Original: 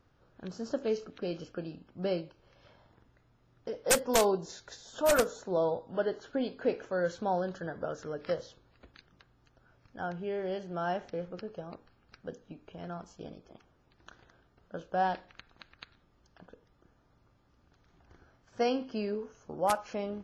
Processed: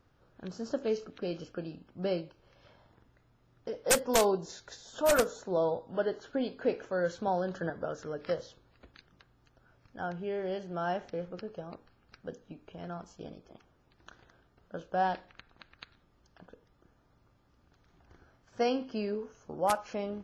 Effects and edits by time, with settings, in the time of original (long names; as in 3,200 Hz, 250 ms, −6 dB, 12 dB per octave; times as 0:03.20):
0:07.27–0:07.70: multiband upward and downward compressor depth 70%
0:15.29–0:15.73: high-shelf EQ 4,800 Hz −7 dB